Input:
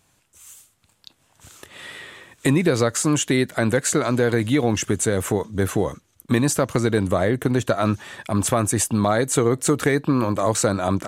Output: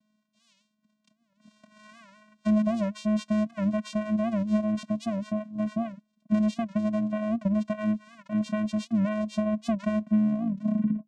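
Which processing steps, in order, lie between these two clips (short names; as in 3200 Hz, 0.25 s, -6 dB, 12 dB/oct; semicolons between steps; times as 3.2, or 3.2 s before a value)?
tape stop at the end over 1.24 s; vocoder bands 4, square 213 Hz; record warp 78 rpm, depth 160 cents; gain -5.5 dB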